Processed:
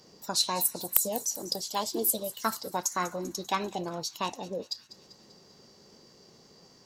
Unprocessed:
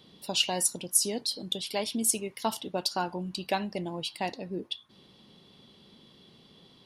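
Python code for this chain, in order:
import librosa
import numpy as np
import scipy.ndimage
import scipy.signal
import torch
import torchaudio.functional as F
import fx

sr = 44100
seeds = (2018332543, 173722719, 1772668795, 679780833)

y = (np.mod(10.0 ** (10.5 / 20.0) * x + 1.0, 2.0) - 1.0) / 10.0 ** (10.5 / 20.0)
y = fx.formant_shift(y, sr, semitones=6)
y = fx.echo_wet_highpass(y, sr, ms=196, feedback_pct=60, hz=3300.0, wet_db=-14.5)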